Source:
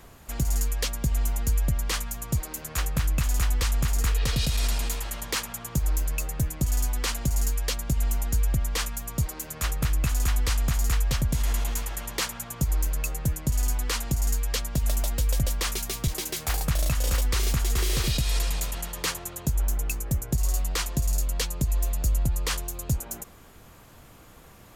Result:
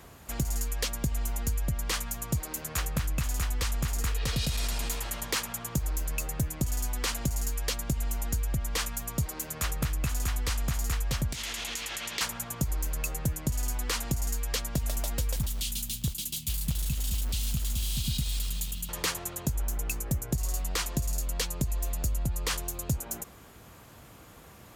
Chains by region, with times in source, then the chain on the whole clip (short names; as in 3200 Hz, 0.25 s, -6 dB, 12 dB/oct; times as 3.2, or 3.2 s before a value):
11.32–12.21 weighting filter D + compressor 4:1, threshold -31 dBFS + Doppler distortion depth 0.37 ms
15.36–18.89 elliptic band-stop 230–3000 Hz + bell 5600 Hz -4.5 dB 0.54 oct + short-mantissa float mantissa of 2-bit
whole clip: compressor 2.5:1, threshold -25 dBFS; HPF 49 Hz